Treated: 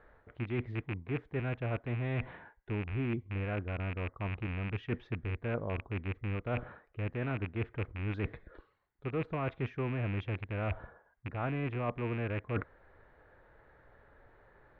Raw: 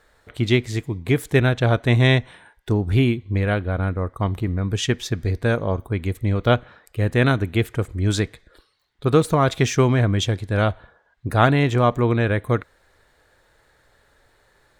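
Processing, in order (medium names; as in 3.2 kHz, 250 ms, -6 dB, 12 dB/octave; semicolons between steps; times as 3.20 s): rattle on loud lows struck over -24 dBFS, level -9 dBFS; reverse; compression 8:1, threshold -31 dBFS, peak gain reduction 20.5 dB; reverse; Bessel low-pass 1.5 kHz, order 4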